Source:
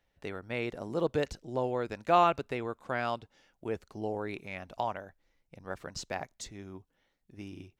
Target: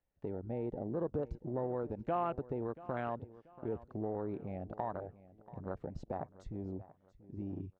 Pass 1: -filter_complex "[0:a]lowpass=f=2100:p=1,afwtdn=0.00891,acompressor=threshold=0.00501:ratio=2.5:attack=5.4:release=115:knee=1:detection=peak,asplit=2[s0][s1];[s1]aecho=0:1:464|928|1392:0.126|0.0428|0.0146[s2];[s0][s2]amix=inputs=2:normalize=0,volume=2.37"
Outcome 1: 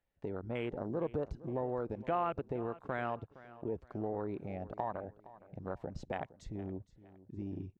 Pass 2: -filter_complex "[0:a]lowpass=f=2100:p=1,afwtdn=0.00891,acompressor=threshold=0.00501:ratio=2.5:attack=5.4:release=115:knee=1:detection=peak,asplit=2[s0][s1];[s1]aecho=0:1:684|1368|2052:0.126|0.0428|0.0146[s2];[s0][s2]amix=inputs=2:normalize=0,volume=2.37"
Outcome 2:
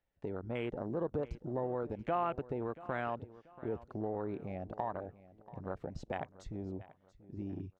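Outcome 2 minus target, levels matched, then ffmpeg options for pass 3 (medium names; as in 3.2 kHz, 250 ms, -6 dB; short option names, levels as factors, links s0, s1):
2 kHz band +5.5 dB
-filter_complex "[0:a]lowpass=f=780:p=1,afwtdn=0.00891,acompressor=threshold=0.00501:ratio=2.5:attack=5.4:release=115:knee=1:detection=peak,asplit=2[s0][s1];[s1]aecho=0:1:684|1368|2052:0.126|0.0428|0.0146[s2];[s0][s2]amix=inputs=2:normalize=0,volume=2.37"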